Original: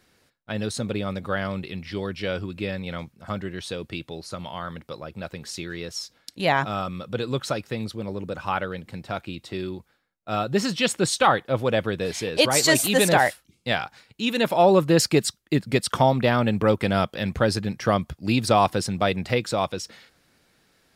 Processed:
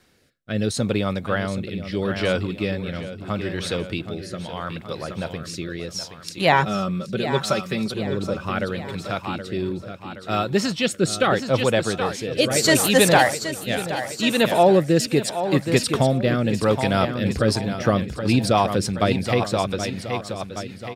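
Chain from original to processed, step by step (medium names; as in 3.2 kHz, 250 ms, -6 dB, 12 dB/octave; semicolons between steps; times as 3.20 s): 6.52–7.92 s: comb 5.2 ms, depth 64%; feedback delay 773 ms, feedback 47%, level -9 dB; rotary cabinet horn 0.75 Hz, later 7 Hz, at 16.83 s; in parallel at +2 dB: gain riding within 3 dB 2 s; on the sum: trim -3 dB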